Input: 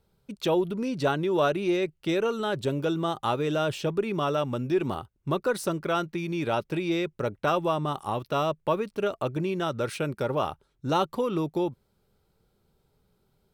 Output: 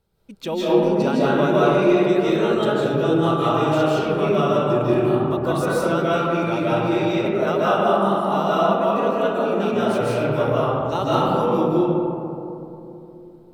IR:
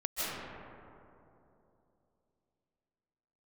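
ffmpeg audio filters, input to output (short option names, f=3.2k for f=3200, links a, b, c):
-filter_complex "[0:a]asettb=1/sr,asplit=3[a][b][c];[a]atrim=end=6.964[d];[b]atrim=start=6.96:end=9.73,asetpts=PTS-STARTPTS,afade=t=in:d=0.004:c=qsin,afade=t=out:st=2.766:d=0.004:c=qsin,afreqshift=46[e];[c]atrim=start=9.726[f];[d][e]acrossfade=d=0.004:c1=hsin:c2=qsin[g];[g][f]acrossfade=d=0.004:c1=qsin:c2=hsin[h];[1:a]atrim=start_sample=2205[i];[h][i]afir=irnorm=-1:irlink=0"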